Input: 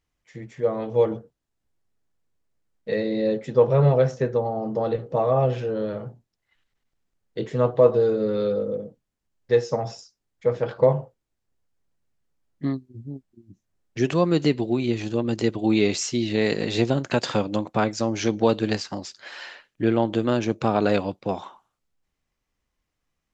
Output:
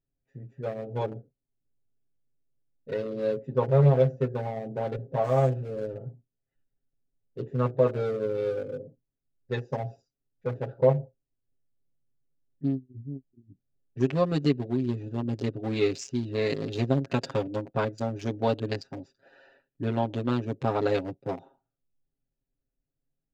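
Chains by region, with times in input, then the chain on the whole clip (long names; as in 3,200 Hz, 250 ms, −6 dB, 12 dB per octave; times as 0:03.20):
0:05.24–0:05.90: hold until the input has moved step −37 dBFS + linearly interpolated sample-rate reduction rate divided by 3×
whole clip: adaptive Wiener filter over 41 samples; comb filter 7.4 ms, depth 86%; level −6 dB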